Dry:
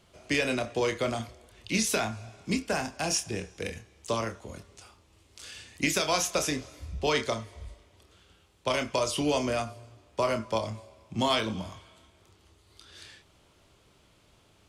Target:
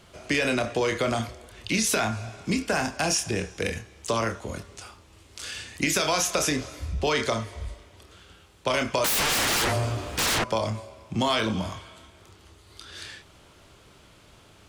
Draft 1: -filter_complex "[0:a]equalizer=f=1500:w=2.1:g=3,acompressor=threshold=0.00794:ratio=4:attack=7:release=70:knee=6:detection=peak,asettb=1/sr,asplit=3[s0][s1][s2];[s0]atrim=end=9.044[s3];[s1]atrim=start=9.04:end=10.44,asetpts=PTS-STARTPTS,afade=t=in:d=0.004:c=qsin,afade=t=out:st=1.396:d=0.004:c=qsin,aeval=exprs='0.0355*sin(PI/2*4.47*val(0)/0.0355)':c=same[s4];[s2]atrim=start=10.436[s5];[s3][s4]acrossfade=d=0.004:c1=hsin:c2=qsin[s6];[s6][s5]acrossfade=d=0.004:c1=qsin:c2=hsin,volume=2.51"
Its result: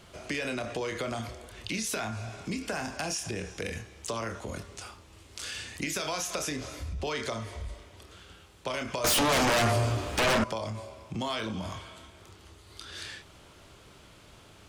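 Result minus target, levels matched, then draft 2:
compression: peak gain reduction +8.5 dB
-filter_complex "[0:a]equalizer=f=1500:w=2.1:g=3,acompressor=threshold=0.0299:ratio=4:attack=7:release=70:knee=6:detection=peak,asettb=1/sr,asplit=3[s0][s1][s2];[s0]atrim=end=9.044[s3];[s1]atrim=start=9.04:end=10.44,asetpts=PTS-STARTPTS,afade=t=in:d=0.004:c=qsin,afade=t=out:st=1.396:d=0.004:c=qsin,aeval=exprs='0.0355*sin(PI/2*4.47*val(0)/0.0355)':c=same[s4];[s2]atrim=start=10.436[s5];[s3][s4]acrossfade=d=0.004:c1=hsin:c2=qsin[s6];[s6][s5]acrossfade=d=0.004:c1=qsin:c2=hsin,volume=2.51"

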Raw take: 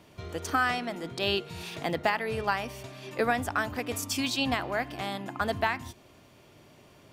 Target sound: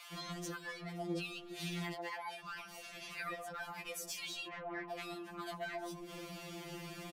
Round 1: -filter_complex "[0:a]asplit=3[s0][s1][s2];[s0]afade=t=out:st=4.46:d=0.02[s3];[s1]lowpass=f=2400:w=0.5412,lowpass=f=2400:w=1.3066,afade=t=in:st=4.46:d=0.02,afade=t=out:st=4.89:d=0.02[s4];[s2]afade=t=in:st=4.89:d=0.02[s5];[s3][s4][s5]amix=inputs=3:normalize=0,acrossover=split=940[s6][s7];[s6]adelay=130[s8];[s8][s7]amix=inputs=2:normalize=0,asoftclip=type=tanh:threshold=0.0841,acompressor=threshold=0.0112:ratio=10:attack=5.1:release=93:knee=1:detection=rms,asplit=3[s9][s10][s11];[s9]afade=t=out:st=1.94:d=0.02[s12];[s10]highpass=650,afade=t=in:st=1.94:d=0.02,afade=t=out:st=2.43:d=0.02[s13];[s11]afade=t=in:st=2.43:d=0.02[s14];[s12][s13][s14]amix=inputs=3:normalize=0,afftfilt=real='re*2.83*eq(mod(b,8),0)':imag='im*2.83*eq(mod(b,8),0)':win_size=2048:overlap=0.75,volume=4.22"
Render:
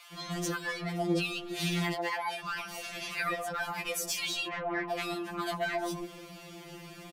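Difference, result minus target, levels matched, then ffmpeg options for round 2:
compression: peak gain reduction -10 dB
-filter_complex "[0:a]asplit=3[s0][s1][s2];[s0]afade=t=out:st=4.46:d=0.02[s3];[s1]lowpass=f=2400:w=0.5412,lowpass=f=2400:w=1.3066,afade=t=in:st=4.46:d=0.02,afade=t=out:st=4.89:d=0.02[s4];[s2]afade=t=in:st=4.89:d=0.02[s5];[s3][s4][s5]amix=inputs=3:normalize=0,acrossover=split=940[s6][s7];[s6]adelay=130[s8];[s8][s7]amix=inputs=2:normalize=0,asoftclip=type=tanh:threshold=0.0841,acompressor=threshold=0.00316:ratio=10:attack=5.1:release=93:knee=1:detection=rms,asplit=3[s9][s10][s11];[s9]afade=t=out:st=1.94:d=0.02[s12];[s10]highpass=650,afade=t=in:st=1.94:d=0.02,afade=t=out:st=2.43:d=0.02[s13];[s11]afade=t=in:st=2.43:d=0.02[s14];[s12][s13][s14]amix=inputs=3:normalize=0,afftfilt=real='re*2.83*eq(mod(b,8),0)':imag='im*2.83*eq(mod(b,8),0)':win_size=2048:overlap=0.75,volume=4.22"

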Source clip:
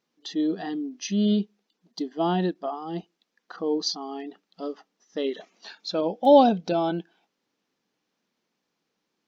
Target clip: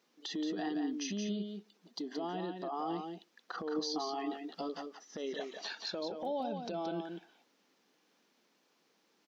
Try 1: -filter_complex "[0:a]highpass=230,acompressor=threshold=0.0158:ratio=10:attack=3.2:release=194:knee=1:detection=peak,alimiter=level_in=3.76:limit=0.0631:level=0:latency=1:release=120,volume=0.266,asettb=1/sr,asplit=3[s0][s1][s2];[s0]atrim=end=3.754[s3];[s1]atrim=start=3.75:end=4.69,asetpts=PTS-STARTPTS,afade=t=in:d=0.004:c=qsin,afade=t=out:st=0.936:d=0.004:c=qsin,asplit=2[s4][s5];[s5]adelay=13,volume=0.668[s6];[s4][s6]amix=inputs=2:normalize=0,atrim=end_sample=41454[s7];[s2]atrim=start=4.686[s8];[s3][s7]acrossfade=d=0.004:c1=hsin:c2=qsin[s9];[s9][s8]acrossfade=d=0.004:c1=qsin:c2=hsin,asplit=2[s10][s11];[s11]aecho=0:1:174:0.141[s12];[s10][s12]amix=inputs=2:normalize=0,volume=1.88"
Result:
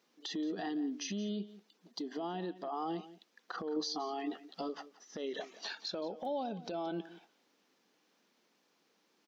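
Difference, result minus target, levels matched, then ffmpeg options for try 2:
echo-to-direct -11 dB
-filter_complex "[0:a]highpass=230,acompressor=threshold=0.0158:ratio=10:attack=3.2:release=194:knee=1:detection=peak,alimiter=level_in=3.76:limit=0.0631:level=0:latency=1:release=120,volume=0.266,asettb=1/sr,asplit=3[s0][s1][s2];[s0]atrim=end=3.754[s3];[s1]atrim=start=3.75:end=4.69,asetpts=PTS-STARTPTS,afade=t=in:d=0.004:c=qsin,afade=t=out:st=0.936:d=0.004:c=qsin,asplit=2[s4][s5];[s5]adelay=13,volume=0.668[s6];[s4][s6]amix=inputs=2:normalize=0,atrim=end_sample=41454[s7];[s2]atrim=start=4.686[s8];[s3][s7]acrossfade=d=0.004:c1=hsin:c2=qsin[s9];[s9][s8]acrossfade=d=0.004:c1=qsin:c2=hsin,asplit=2[s10][s11];[s11]aecho=0:1:174:0.501[s12];[s10][s12]amix=inputs=2:normalize=0,volume=1.88"

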